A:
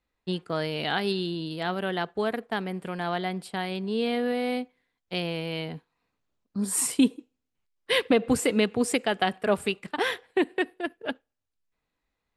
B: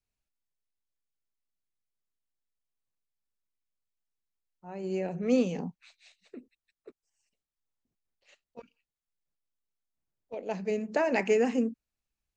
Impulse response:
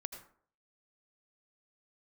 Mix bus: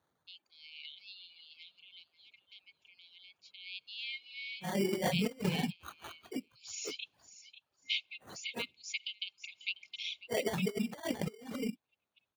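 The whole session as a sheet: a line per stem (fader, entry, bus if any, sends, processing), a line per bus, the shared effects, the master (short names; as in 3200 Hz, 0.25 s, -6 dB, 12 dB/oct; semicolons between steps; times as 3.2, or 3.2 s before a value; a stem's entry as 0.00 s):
3.51 s -15.5 dB -> 3.83 s -4.5 dB, 0.00 s, no send, echo send -13 dB, compressor, threshold -27 dBFS, peak gain reduction 10.5 dB; FFT band-pass 2100–7100 Hz
+1.0 dB, 0.00 s, no send, no echo send, phase scrambler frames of 50 ms; high shelf 2400 Hz +8.5 dB; sample-and-hold 17×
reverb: off
echo: feedback echo 0.543 s, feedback 25%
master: HPF 76 Hz 24 dB/oct; reverb removal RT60 1.1 s; negative-ratio compressor -34 dBFS, ratio -0.5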